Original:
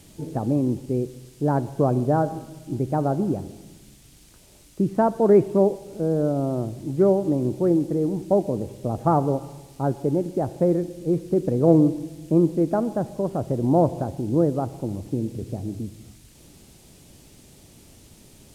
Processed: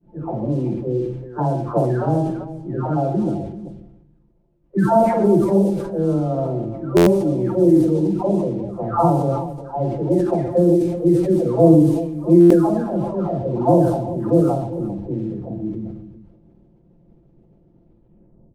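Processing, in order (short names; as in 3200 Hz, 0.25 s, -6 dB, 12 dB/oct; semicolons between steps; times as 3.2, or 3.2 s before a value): spectral delay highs early, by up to 0.953 s; low-pass opened by the level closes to 510 Hz, open at -18 dBFS; expander -49 dBFS; on a send: tapped delay 43/46/55/121/389 ms -13.5/-7.5/-13/-10.5/-14.5 dB; on the sum: stuck buffer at 6.96/12.4, samples 512, times 8; sustainer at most 53 dB/s; gain +4.5 dB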